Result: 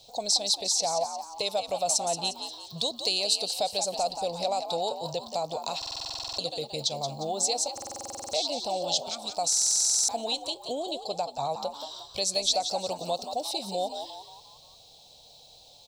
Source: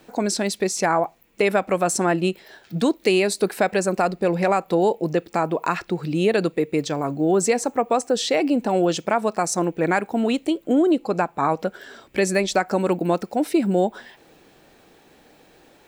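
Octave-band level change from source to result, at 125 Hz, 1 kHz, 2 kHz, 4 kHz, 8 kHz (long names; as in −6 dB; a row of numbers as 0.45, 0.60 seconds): −16.5, −7.5, −17.5, +5.5, +3.5 decibels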